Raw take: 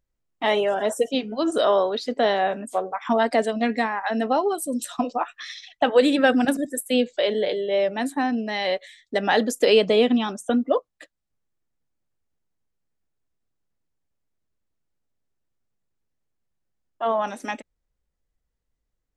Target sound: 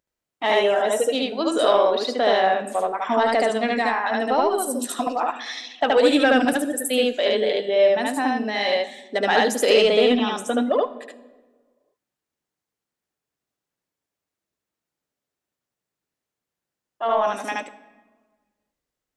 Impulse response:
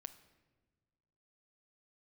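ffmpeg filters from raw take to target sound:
-filter_complex "[0:a]highpass=frequency=350:poles=1,acontrast=86,asplit=2[link_01][link_02];[1:a]atrim=start_sample=2205,adelay=74[link_03];[link_02][link_03]afir=irnorm=-1:irlink=0,volume=5.5dB[link_04];[link_01][link_04]amix=inputs=2:normalize=0,volume=-6dB"

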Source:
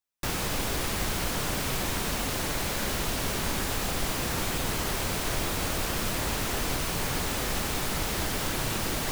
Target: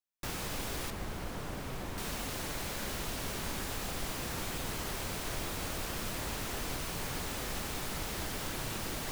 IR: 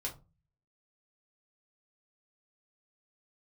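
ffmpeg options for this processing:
-filter_complex "[0:a]asettb=1/sr,asplit=3[link_01][link_02][link_03];[link_01]atrim=end=0.904[link_04];[link_02]atrim=start=0.9:end=1.98,asetpts=PTS-STARTPTS,afade=type=in:duration=0.004:curve=qsin,afade=type=out:start_time=1.076:duration=0.004:curve=qsin,highshelf=frequency=2100:gain=-10[link_05];[link_03]atrim=start=1.976[link_06];[link_04][link_05]acrossfade=duration=0.004:curve1=hsin:curve2=qsin[link_07];[link_07][link_06]acrossfade=duration=0.004:curve1=qsin:curve2=hsin,volume=-8dB"

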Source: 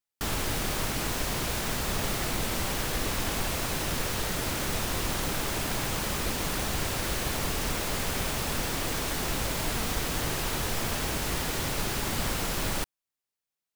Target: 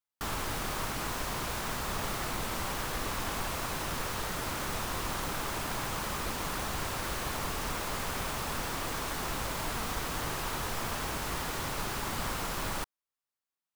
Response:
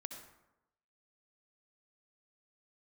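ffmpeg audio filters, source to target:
-af "equalizer=frequency=1100:width_type=o:width=1.1:gain=7,volume=-6dB"

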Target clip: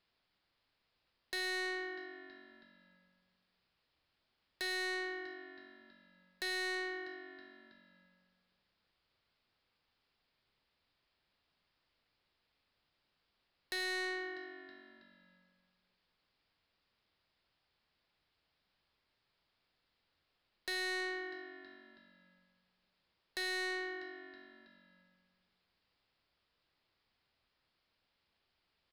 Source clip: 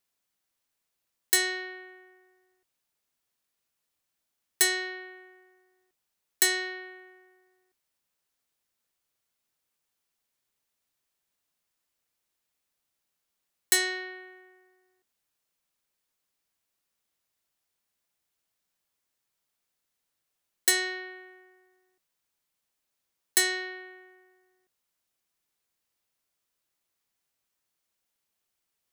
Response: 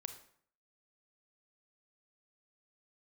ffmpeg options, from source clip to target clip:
-filter_complex "[0:a]acompressor=threshold=-32dB:ratio=12,aresample=11025,aresample=44100,asplit=5[link_01][link_02][link_03][link_04][link_05];[link_02]adelay=323,afreqshift=-47,volume=-20dB[link_06];[link_03]adelay=646,afreqshift=-94,volume=-25.5dB[link_07];[link_04]adelay=969,afreqshift=-141,volume=-31dB[link_08];[link_05]adelay=1292,afreqshift=-188,volume=-36.5dB[link_09];[link_01][link_06][link_07][link_08][link_09]amix=inputs=5:normalize=0,asplit=2[link_10][link_11];[1:a]atrim=start_sample=2205,lowshelf=frequency=130:gain=10[link_12];[link_11][link_12]afir=irnorm=-1:irlink=0,volume=3.5dB[link_13];[link_10][link_13]amix=inputs=2:normalize=0,asoftclip=type=tanh:threshold=-35dB"

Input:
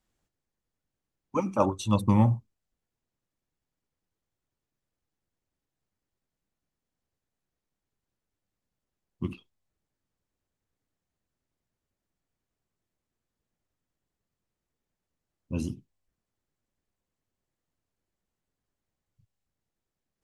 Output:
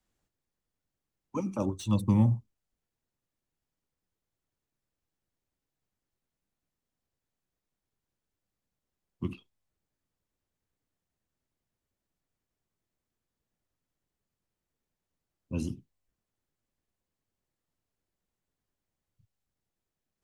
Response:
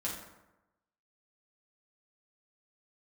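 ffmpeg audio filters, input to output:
-filter_complex "[0:a]acrossover=split=190|420|3400[link_01][link_02][link_03][link_04];[link_03]acompressor=threshold=-38dB:ratio=6[link_05];[link_04]asoftclip=type=hard:threshold=-38.5dB[link_06];[link_01][link_02][link_05][link_06]amix=inputs=4:normalize=0,volume=-1.5dB"

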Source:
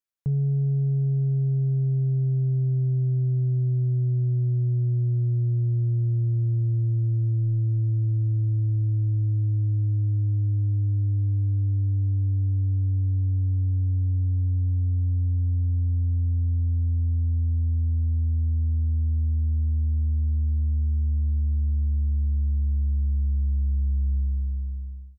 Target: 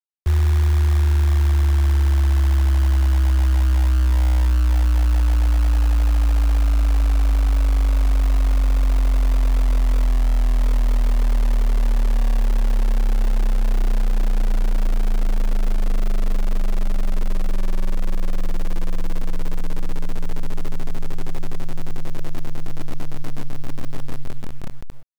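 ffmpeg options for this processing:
ffmpeg -i in.wav -af "afreqshift=-62,acrusher=bits=7:dc=4:mix=0:aa=0.000001,volume=7dB" out.wav

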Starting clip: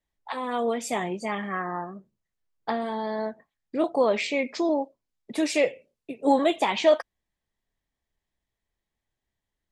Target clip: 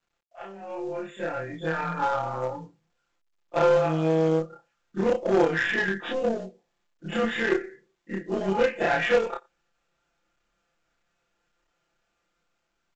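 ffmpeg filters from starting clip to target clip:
ffmpeg -i in.wav -filter_complex "[0:a]afftfilt=real='re':imag='-im':win_size=2048:overlap=0.75,asetrate=33075,aresample=44100,acompressor=threshold=-33dB:ratio=2.5,adynamicequalizer=threshold=0.00158:dfrequency=1700:dqfactor=7.4:tfrequency=1700:tqfactor=7.4:attack=5:release=100:ratio=0.375:range=2.5:mode=boostabove:tftype=bell,asplit=2[link_01][link_02];[link_02]adelay=87.46,volume=-27dB,highshelf=frequency=4000:gain=-1.97[link_03];[link_01][link_03]amix=inputs=2:normalize=0,dynaudnorm=framelen=650:gausssize=5:maxgain=16.5dB,asplit=2[link_04][link_05];[link_05]highpass=frequency=720:poles=1,volume=15dB,asoftclip=type=tanh:threshold=-5.5dB[link_06];[link_04][link_06]amix=inputs=2:normalize=0,lowpass=frequency=1400:poles=1,volume=-6dB,asuperstop=centerf=5100:order=20:qfactor=1.6,acrusher=bits=7:mode=log:mix=0:aa=0.000001,aecho=1:1:5.8:0.82,aeval=exprs='0.708*(cos(1*acos(clip(val(0)/0.708,-1,1)))-cos(1*PI/2))+0.126*(cos(3*acos(clip(val(0)/0.708,-1,1)))-cos(3*PI/2))+0.00891*(cos(5*acos(clip(val(0)/0.708,-1,1)))-cos(5*PI/2))+0.0355*(cos(6*acos(clip(val(0)/0.708,-1,1)))-cos(6*PI/2))+0.0316*(cos(8*acos(clip(val(0)/0.708,-1,1)))-cos(8*PI/2))':channel_layout=same,volume=-6dB" -ar 16000 -c:a pcm_mulaw out.wav

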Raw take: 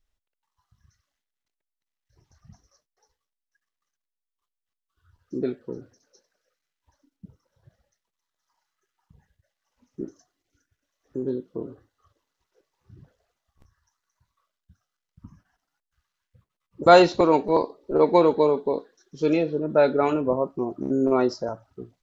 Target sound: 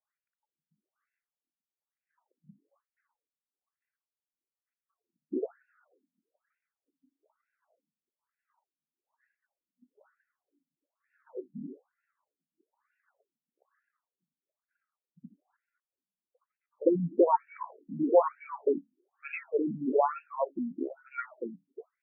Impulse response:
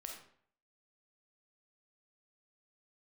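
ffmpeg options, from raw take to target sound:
-af "afftfilt=real='re*between(b*sr/1024,200*pow(2000/200,0.5+0.5*sin(2*PI*1.1*pts/sr))/1.41,200*pow(2000/200,0.5+0.5*sin(2*PI*1.1*pts/sr))*1.41)':imag='im*between(b*sr/1024,200*pow(2000/200,0.5+0.5*sin(2*PI*1.1*pts/sr))/1.41,200*pow(2000/200,0.5+0.5*sin(2*PI*1.1*pts/sr))*1.41)':win_size=1024:overlap=0.75"

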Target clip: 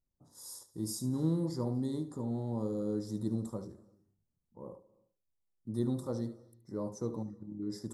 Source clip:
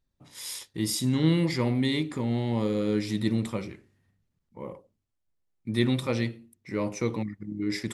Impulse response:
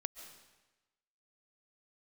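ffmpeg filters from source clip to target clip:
-filter_complex "[0:a]asuperstop=centerf=2500:order=4:qfactor=0.54,asplit=2[link_01][link_02];[1:a]atrim=start_sample=2205,afade=type=out:start_time=0.37:duration=0.01,atrim=end_sample=16758,adelay=73[link_03];[link_02][link_03]afir=irnorm=-1:irlink=0,volume=-12dB[link_04];[link_01][link_04]amix=inputs=2:normalize=0,volume=-8dB"

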